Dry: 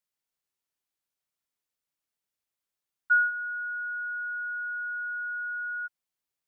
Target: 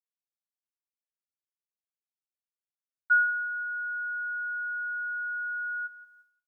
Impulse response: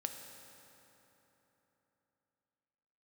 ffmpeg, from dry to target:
-filter_complex "[0:a]asplit=2[a][b];[b]adelay=175,lowpass=f=1.4k:p=1,volume=-13dB,asplit=2[c][d];[d]adelay=175,lowpass=f=1.4k:p=1,volume=0.5,asplit=2[e][f];[f]adelay=175,lowpass=f=1.4k:p=1,volume=0.5,asplit=2[g][h];[h]adelay=175,lowpass=f=1.4k:p=1,volume=0.5,asplit=2[i][j];[j]adelay=175,lowpass=f=1.4k:p=1,volume=0.5[k];[c][e][g][i][k]amix=inputs=5:normalize=0[l];[a][l]amix=inputs=2:normalize=0,agate=range=-33dB:threshold=-59dB:ratio=3:detection=peak"

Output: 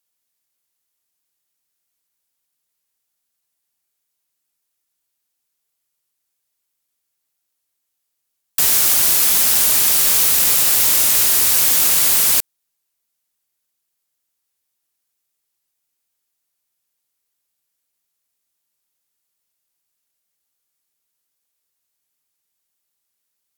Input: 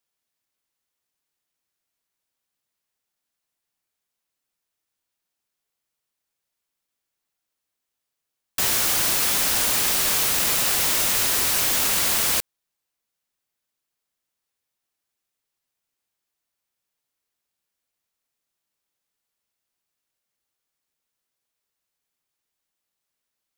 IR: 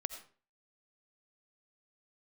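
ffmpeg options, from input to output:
-af "aemphasis=mode=production:type=cd"

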